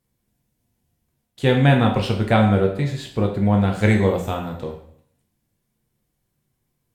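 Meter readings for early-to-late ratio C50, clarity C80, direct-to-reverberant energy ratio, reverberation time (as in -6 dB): 7.5 dB, 10.5 dB, 1.0 dB, 0.60 s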